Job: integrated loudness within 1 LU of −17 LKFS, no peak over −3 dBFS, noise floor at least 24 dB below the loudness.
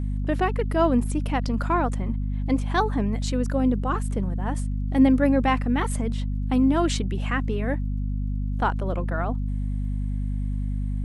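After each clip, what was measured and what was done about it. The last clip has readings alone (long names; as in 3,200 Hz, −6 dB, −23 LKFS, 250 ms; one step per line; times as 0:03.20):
crackle rate 25 per second; mains hum 50 Hz; hum harmonics up to 250 Hz; level of the hum −24 dBFS; integrated loudness −25.0 LKFS; sample peak −8.0 dBFS; target loudness −17.0 LKFS
→ click removal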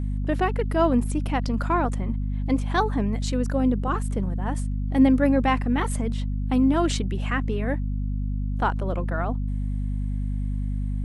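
crackle rate 0 per second; mains hum 50 Hz; hum harmonics up to 250 Hz; level of the hum −24 dBFS
→ hum removal 50 Hz, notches 5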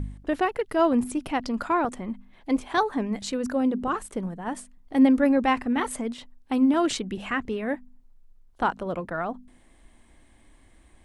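mains hum none found; integrated loudness −26.0 LKFS; sample peak −9.5 dBFS; target loudness −17.0 LKFS
→ level +9 dB
brickwall limiter −3 dBFS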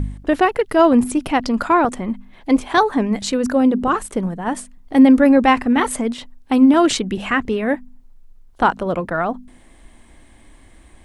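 integrated loudness −17.5 LKFS; sample peak −3.0 dBFS; background noise floor −48 dBFS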